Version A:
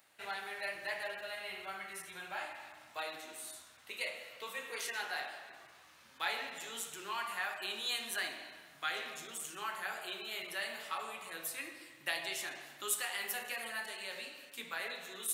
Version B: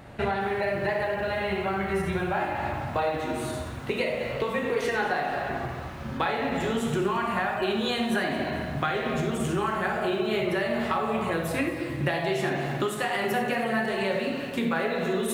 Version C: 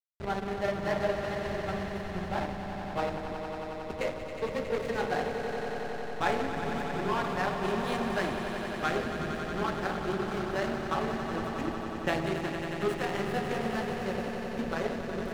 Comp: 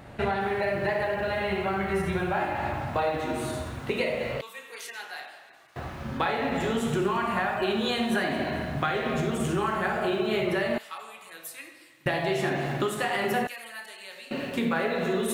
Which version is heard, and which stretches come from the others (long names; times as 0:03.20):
B
0:04.41–0:05.76: punch in from A
0:10.78–0:12.06: punch in from A
0:13.47–0:14.31: punch in from A
not used: C